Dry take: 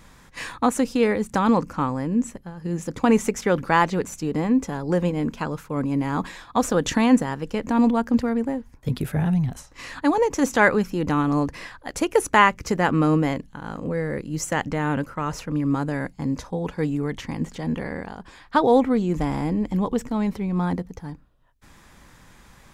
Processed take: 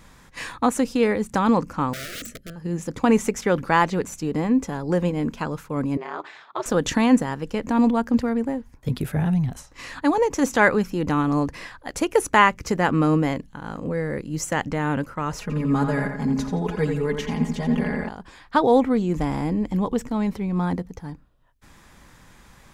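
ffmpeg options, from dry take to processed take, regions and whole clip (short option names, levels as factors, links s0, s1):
-filter_complex "[0:a]asettb=1/sr,asplit=3[s0][s1][s2];[s0]atrim=end=1.934[s3];[s1]atrim=start=1.93:end=2.56,asetpts=PTS-STARTPTS,afade=t=in:d=0.004:c=qsin,afade=t=out:st=0.626:d=0.004:c=qsin,aeval=exprs='(mod(28.2*val(0)+1,2)-1)/28.2':c=same,asuperstop=centerf=910:order=12:qfactor=1.6[s4];[s2]atrim=start=2.556[s5];[s3][s4]acrossfade=d=0.004:c1=hsin:c2=qsin[s6];[s6][s5]acrossfade=d=0.004:c1=qsin:c2=hsin,asettb=1/sr,asplit=3[s7][s8][s9];[s7]atrim=end=5.974[s10];[s8]atrim=start=5.97:end=6.66,asetpts=PTS-STARTPTS,afade=t=in:d=0.004:c=qsin,afade=t=out:st=0.686:d=0.004:c=qsin,aeval=exprs='val(0)*sin(2*PI*120*n/s)':c=same,highpass=510,lowpass=3900[s11];[s9]atrim=start=6.656[s12];[s10][s11]acrossfade=d=0.004:c1=hsin:c2=qsin[s13];[s13][s12]acrossfade=d=0.004:c1=qsin:c2=hsin,asettb=1/sr,asplit=3[s14][s15][s16];[s14]atrim=end=15.414[s17];[s15]atrim=start=15.41:end=18.09,asetpts=PTS-STARTPTS,afade=t=in:d=0.004:c=qsin,afade=t=out:st=2.676:d=0.004:c=qsin,aecho=1:1:4.8:0.91,atrim=end_sample=118188,asplit=2[s18][s19];[s19]adelay=86,lowpass=f=3800:p=1,volume=0.531,asplit=2[s20][s21];[s21]adelay=86,lowpass=f=3800:p=1,volume=0.51,asplit=2[s22][s23];[s23]adelay=86,lowpass=f=3800:p=1,volume=0.51,asplit=2[s24][s25];[s25]adelay=86,lowpass=f=3800:p=1,volume=0.51,asplit=2[s26][s27];[s27]adelay=86,lowpass=f=3800:p=1,volume=0.51,asplit=2[s28][s29];[s29]adelay=86,lowpass=f=3800:p=1,volume=0.51[s30];[s18][s20][s22][s24][s26][s28][s30]amix=inputs=7:normalize=0,atrim=end_sample=118188[s31];[s16]atrim=start=18.086[s32];[s17][s31]acrossfade=d=0.004:c1=hsin:c2=qsin[s33];[s33][s32]acrossfade=d=0.004:c1=qsin:c2=hsin"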